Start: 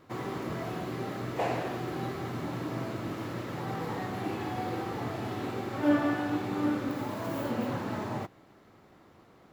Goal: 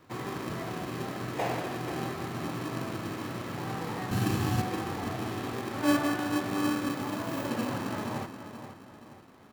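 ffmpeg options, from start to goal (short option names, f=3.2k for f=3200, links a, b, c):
-filter_complex "[0:a]asettb=1/sr,asplit=3[a][b][c];[a]atrim=end=4.114[d];[b]atrim=start=4.11:end=4.62,asetpts=PTS-STARTPTS,afade=t=in:d=0.004:c=qsin,afade=t=out:st=0.506:d=0.004:c=qsin,bass=f=250:g=13,treble=f=4k:g=12[e];[c]atrim=start=4.616[f];[d][e]acrossfade=d=0.004:c1=hsin:c2=qsin[g];[g][f]acrossfade=d=0.004:c1=qsin:c2=hsin,asplit=2[h][i];[i]adelay=478,lowpass=f=3.7k:p=1,volume=-10dB,asplit=2[j][k];[k]adelay=478,lowpass=f=3.7k:p=1,volume=0.44,asplit=2[l][m];[m]adelay=478,lowpass=f=3.7k:p=1,volume=0.44,asplit=2[n][o];[o]adelay=478,lowpass=f=3.7k:p=1,volume=0.44,asplit=2[p][q];[q]adelay=478,lowpass=f=3.7k:p=1,volume=0.44[r];[h][j][l][n][p][r]amix=inputs=6:normalize=0,acrossover=split=470|3000[s][t][u];[s]acrusher=samples=31:mix=1:aa=0.000001[v];[v][t][u]amix=inputs=3:normalize=0"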